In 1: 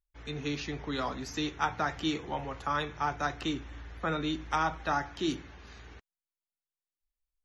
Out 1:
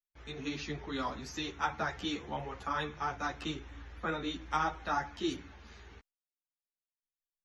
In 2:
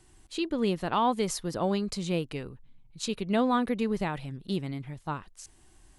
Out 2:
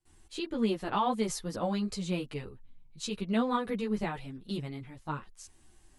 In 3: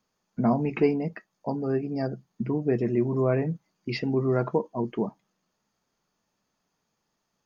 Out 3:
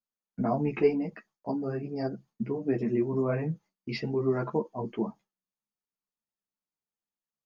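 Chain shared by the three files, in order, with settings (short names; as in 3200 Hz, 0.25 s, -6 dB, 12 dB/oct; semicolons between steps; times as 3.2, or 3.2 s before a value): gate with hold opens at -50 dBFS; ensemble effect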